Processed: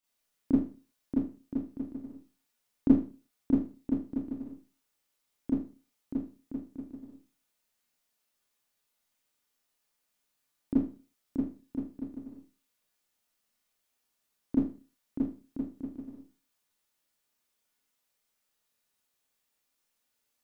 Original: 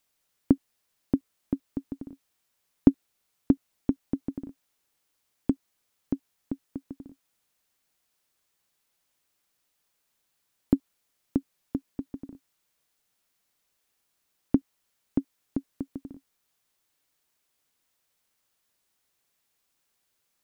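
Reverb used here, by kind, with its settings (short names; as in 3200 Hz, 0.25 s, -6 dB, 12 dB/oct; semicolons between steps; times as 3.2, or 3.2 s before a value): Schroeder reverb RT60 0.36 s, combs from 26 ms, DRR -9.5 dB; gain -13.5 dB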